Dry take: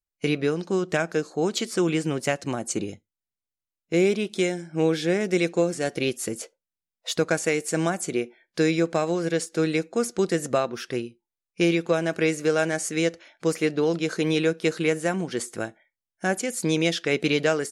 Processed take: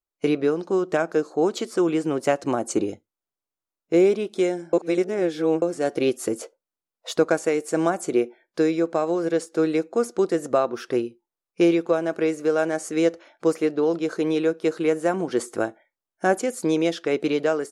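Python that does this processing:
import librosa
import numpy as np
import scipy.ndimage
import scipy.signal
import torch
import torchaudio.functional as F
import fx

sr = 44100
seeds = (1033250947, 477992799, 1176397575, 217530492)

y = fx.edit(x, sr, fx.reverse_span(start_s=4.73, length_s=0.89), tone=tone)
y = fx.band_shelf(y, sr, hz=600.0, db=9.0, octaves=2.7)
y = fx.rider(y, sr, range_db=4, speed_s=0.5)
y = y * 10.0 ** (-6.0 / 20.0)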